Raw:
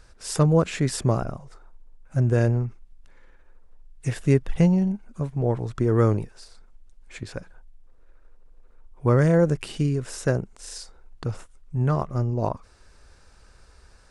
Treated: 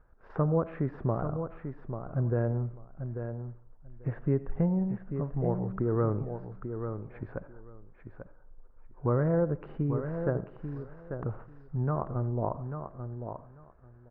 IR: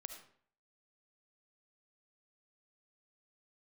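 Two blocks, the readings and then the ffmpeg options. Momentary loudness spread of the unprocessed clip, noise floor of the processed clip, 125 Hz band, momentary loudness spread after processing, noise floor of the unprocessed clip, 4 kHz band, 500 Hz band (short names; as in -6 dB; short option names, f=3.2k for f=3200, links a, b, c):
18 LU, -55 dBFS, -7.5 dB, 14 LU, -53 dBFS, under -30 dB, -6.0 dB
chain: -filter_complex "[0:a]lowpass=f=1.4k:w=0.5412,lowpass=f=1.4k:w=1.3066,agate=range=-8dB:threshold=-48dB:ratio=16:detection=peak,lowshelf=f=410:g=-3.5,acompressor=threshold=-34dB:ratio=1.5,aecho=1:1:841|1682:0.398|0.0597,asplit=2[a][b];[1:a]atrim=start_sample=2205[c];[b][c]afir=irnorm=-1:irlink=0,volume=-1.5dB[d];[a][d]amix=inputs=2:normalize=0,volume=-3dB"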